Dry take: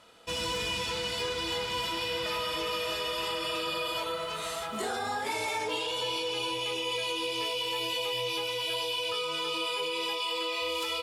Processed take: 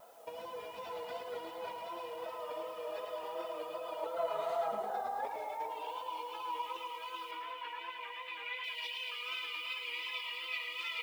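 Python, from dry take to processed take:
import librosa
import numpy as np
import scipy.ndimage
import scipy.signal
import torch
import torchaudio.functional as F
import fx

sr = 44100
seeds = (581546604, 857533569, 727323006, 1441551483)

y = fx.hum_notches(x, sr, base_hz=60, count=9)
y = fx.dereverb_blind(y, sr, rt60_s=0.63)
y = fx.over_compress(y, sr, threshold_db=-37.0, ratio=-0.5)
y = fx.filter_sweep_bandpass(y, sr, from_hz=680.0, to_hz=2100.0, start_s=5.28, end_s=8.67, q=3.2)
y = fx.dmg_noise_colour(y, sr, seeds[0], colour='blue', level_db=-72.0)
y = fx.vibrato(y, sr, rate_hz=2.7, depth_cents=58.0)
y = fx.cabinet(y, sr, low_hz=200.0, low_slope=24, high_hz=3400.0, hz=(260.0, 1000.0, 1600.0, 2900.0), db=(7, 5, 4, -4), at=(7.31, 8.64))
y = y + 10.0 ** (-18.0 / 20.0) * np.pad(y, (int(109 * sr / 1000.0), 0))[:len(y)]
y = fx.echo_crushed(y, sr, ms=108, feedback_pct=55, bits=12, wet_db=-6)
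y = F.gain(torch.from_numpy(y), 5.5).numpy()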